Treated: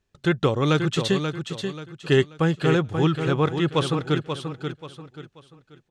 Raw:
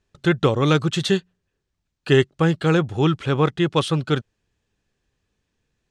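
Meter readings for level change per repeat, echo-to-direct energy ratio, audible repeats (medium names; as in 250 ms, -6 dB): -9.5 dB, -6.5 dB, 3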